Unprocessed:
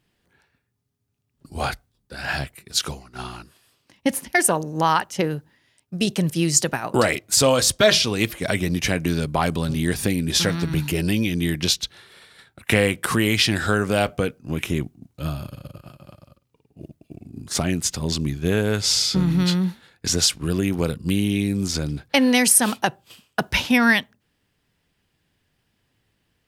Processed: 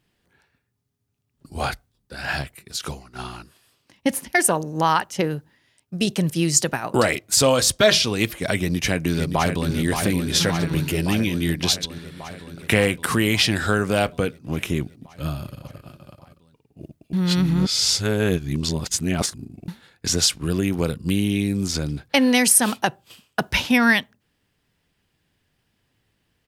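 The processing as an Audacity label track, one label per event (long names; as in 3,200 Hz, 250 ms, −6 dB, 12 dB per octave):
2.410000	2.840000	downward compressor, threshold −24 dBFS
8.570000	9.700000	delay throw 570 ms, feedback 75%, level −6.5 dB
17.130000	19.680000	reverse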